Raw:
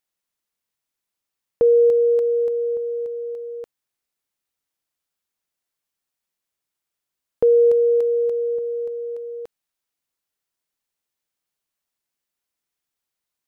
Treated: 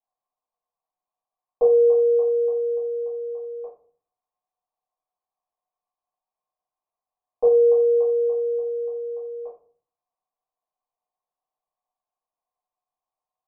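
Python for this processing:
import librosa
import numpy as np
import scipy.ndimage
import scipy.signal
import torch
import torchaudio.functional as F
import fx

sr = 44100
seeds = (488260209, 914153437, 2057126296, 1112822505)

y = fx.formant_cascade(x, sr, vowel='a')
y = fx.room_shoebox(y, sr, seeds[0], volume_m3=35.0, walls='mixed', distance_m=1.9)
y = y * librosa.db_to_amplitude(4.0)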